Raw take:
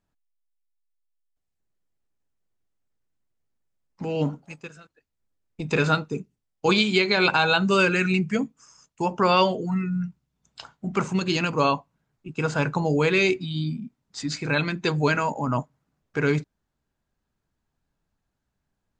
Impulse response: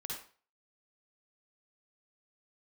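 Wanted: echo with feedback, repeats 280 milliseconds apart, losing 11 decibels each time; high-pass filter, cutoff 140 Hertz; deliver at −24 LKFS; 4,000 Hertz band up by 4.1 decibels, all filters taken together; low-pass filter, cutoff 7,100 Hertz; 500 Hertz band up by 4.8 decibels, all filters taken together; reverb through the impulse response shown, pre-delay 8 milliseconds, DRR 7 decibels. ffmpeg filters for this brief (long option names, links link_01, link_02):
-filter_complex "[0:a]highpass=140,lowpass=7100,equalizer=frequency=500:width_type=o:gain=6,equalizer=frequency=4000:width_type=o:gain=5,aecho=1:1:280|560|840:0.282|0.0789|0.0221,asplit=2[link_01][link_02];[1:a]atrim=start_sample=2205,adelay=8[link_03];[link_02][link_03]afir=irnorm=-1:irlink=0,volume=-6.5dB[link_04];[link_01][link_04]amix=inputs=2:normalize=0,volume=-4dB"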